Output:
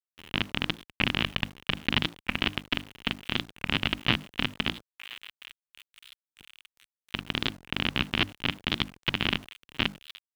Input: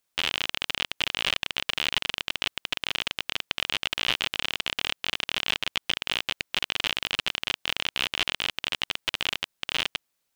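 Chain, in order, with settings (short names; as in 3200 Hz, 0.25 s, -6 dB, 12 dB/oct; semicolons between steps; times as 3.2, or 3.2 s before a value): 4.7–7.14 median filter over 15 samples; upward compressor, threshold -39 dBFS; gate -41 dBFS, range -36 dB; air absorption 280 m; narrowing echo 1.025 s, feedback 42%, band-pass 3000 Hz, level -17 dB; step gate "x..x.xx..xxx." 144 bpm -24 dB; resonant low shelf 350 Hz +10.5 dB, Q 1.5; notches 50/100/150/200/250/300 Hz; bit-crush 9-bit; HPF 47 Hz 6 dB/oct; record warp 45 rpm, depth 250 cents; gain +5.5 dB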